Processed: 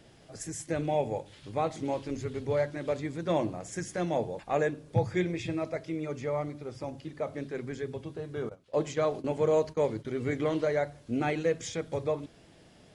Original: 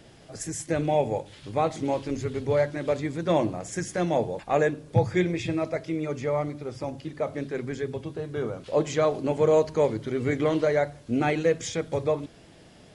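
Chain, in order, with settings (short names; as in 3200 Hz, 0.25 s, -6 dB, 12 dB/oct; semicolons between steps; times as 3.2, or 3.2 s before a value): 8.49–10.05 gate -31 dBFS, range -17 dB; gain -5 dB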